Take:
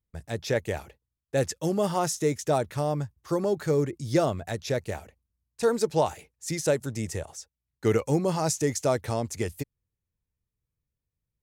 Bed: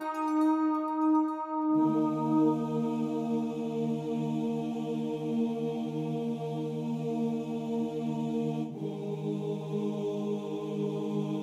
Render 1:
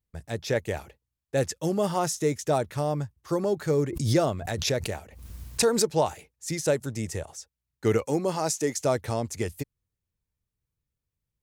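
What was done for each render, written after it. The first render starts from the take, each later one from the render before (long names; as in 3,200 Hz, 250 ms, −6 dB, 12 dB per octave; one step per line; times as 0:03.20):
0:03.79–0:05.90: background raised ahead of every attack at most 56 dB per second
0:08.05–0:08.78: high-pass filter 210 Hz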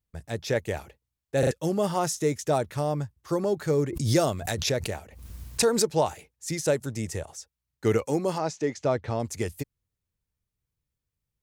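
0:01.39: stutter in place 0.04 s, 3 plays
0:04.12–0:04.53: high-shelf EQ 5,400 Hz → 3,300 Hz +10.5 dB
0:08.38–0:09.20: high-frequency loss of the air 160 metres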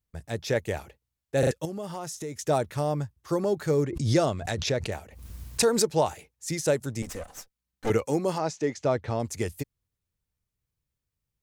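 0:01.65–0:02.39: downward compressor 3 to 1, threshold −35 dBFS
0:03.85–0:04.92: high-frequency loss of the air 60 metres
0:07.02–0:07.90: lower of the sound and its delayed copy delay 3.9 ms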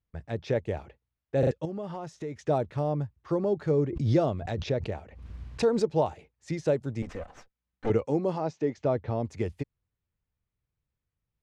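low-pass filter 2,600 Hz 12 dB per octave
dynamic equaliser 1,700 Hz, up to −8 dB, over −44 dBFS, Q 0.85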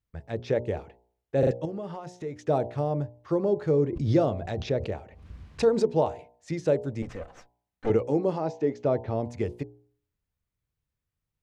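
hum removal 59.79 Hz, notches 17
dynamic equaliser 430 Hz, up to +3 dB, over −35 dBFS, Q 0.88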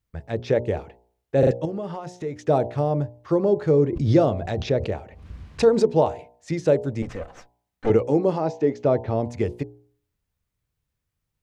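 level +5 dB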